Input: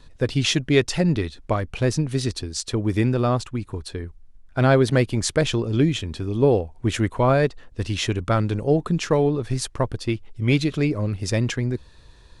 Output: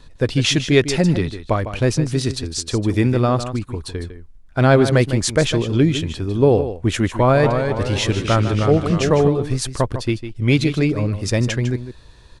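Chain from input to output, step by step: 7.12–9.28 echoes that change speed 0.238 s, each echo -1 st, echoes 3, each echo -6 dB; echo 0.153 s -11 dB; gain +3.5 dB

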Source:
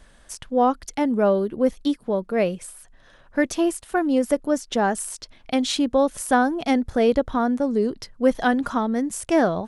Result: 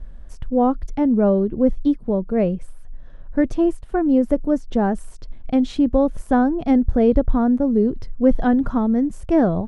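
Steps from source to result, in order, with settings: tilt -4.5 dB/oct; gain -3.5 dB

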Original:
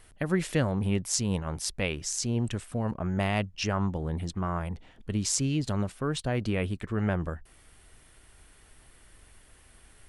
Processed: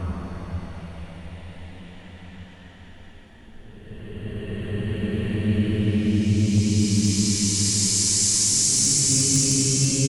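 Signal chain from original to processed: echo 0.157 s -14.5 dB; Paulstretch 15×, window 0.25 s, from 4.75; hard clip -18.5 dBFS, distortion -35 dB; gain +8 dB

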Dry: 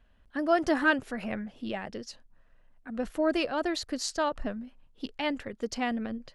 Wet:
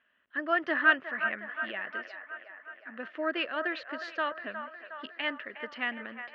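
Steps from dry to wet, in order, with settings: speaker cabinet 400–3200 Hz, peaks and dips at 480 Hz -6 dB, 800 Hz -10 dB, 1300 Hz +4 dB, 1800 Hz +9 dB, 2900 Hz +5 dB; band-limited delay 0.362 s, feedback 63%, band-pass 1100 Hz, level -8 dB; gain -2 dB

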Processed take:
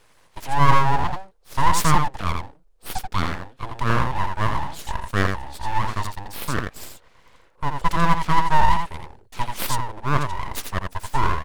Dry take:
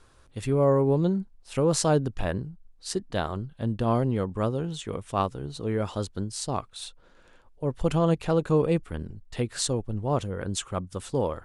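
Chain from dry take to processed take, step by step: resonant low shelf 310 Hz -13.5 dB, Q 3; echo 84 ms -5 dB; full-wave rectifier; gain +4 dB

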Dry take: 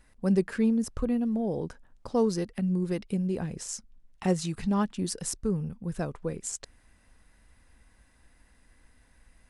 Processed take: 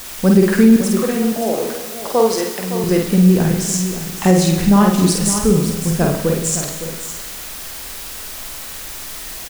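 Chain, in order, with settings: 0.76–2.84 HPF 460 Hz 12 dB/oct; added noise white -47 dBFS; doubler 49 ms -3.5 dB; echo 0.561 s -11 dB; digital reverb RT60 1.1 s, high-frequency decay 1×, pre-delay 20 ms, DRR 7.5 dB; maximiser +14.5 dB; gain -1 dB

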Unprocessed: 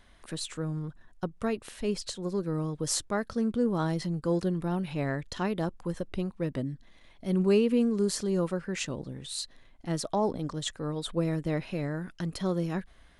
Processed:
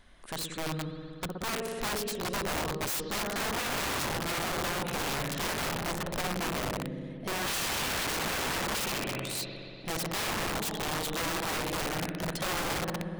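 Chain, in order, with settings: 7.27–9.09 speaker cabinet 120–4200 Hz, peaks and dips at 330 Hz +4 dB, 690 Hz +9 dB, 1400 Hz +4 dB, 2400 Hz +9 dB; spring tank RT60 2.9 s, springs 60 ms, chirp 75 ms, DRR 2 dB; wrapped overs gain 27 dB

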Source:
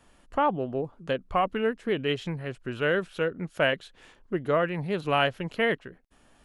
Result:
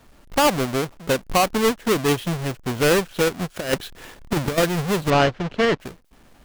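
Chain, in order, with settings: half-waves squared off; 3.56–4.58 negative-ratio compressor -24 dBFS, ratio -0.5; 5.1–5.8 air absorption 160 m; gain +3 dB

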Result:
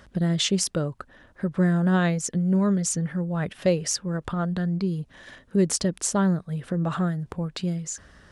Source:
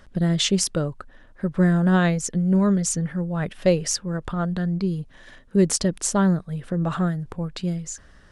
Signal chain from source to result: HPF 48 Hz 12 dB/oct; in parallel at +1 dB: compressor, threshold -31 dBFS, peak gain reduction 17 dB; on the sum: gain -4.5 dB

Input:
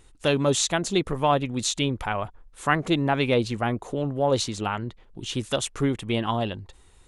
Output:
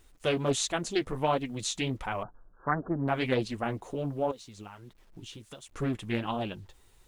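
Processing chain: 4.31–5.71 compressor 16:1, threshold -36 dBFS, peak gain reduction 19 dB; requantised 10-bit, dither none; flange 1.4 Hz, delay 2.6 ms, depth 7.8 ms, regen -31%; 2.23–3.08 brick-wall FIR low-pass 1700 Hz; Doppler distortion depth 0.35 ms; gain -2.5 dB

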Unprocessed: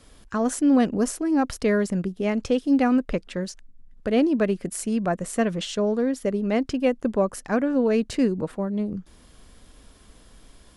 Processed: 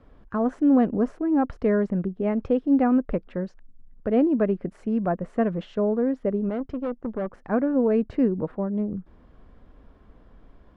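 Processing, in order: 6.49–7.45 tube stage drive 24 dB, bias 0.65; LPF 1300 Hz 12 dB/oct

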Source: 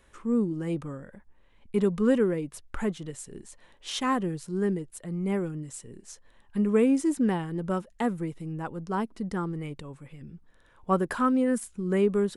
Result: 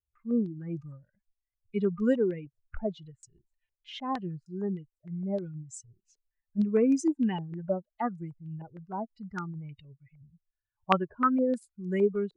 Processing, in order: per-bin expansion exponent 2; stepped low-pass 6.5 Hz 430–6000 Hz

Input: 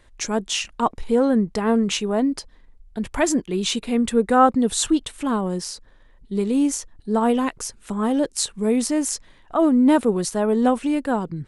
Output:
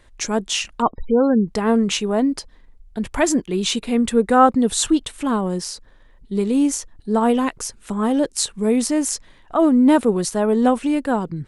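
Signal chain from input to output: 0.82–1.48 spectral gate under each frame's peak -30 dB strong; gain +2 dB

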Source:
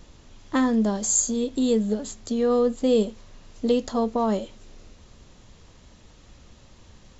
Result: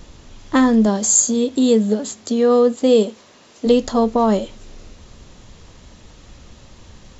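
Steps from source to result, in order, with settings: 0.86–3.65 HPF 100 Hz -> 290 Hz 12 dB/oct; gain +7.5 dB

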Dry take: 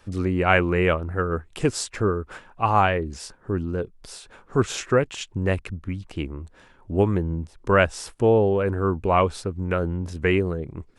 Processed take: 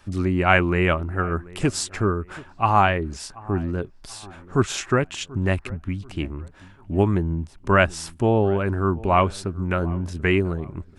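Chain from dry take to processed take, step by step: bell 480 Hz -13 dB 0.21 oct; on a send: dark delay 0.735 s, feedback 36%, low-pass 1600 Hz, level -20.5 dB; on the sum: gain +2 dB

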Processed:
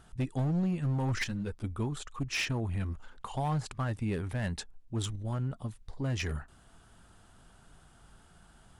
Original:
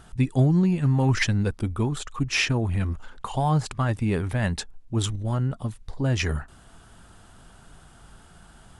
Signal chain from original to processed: hard clip -18 dBFS, distortion -15 dB; 1.24–1.64 ensemble effect; gain -8 dB

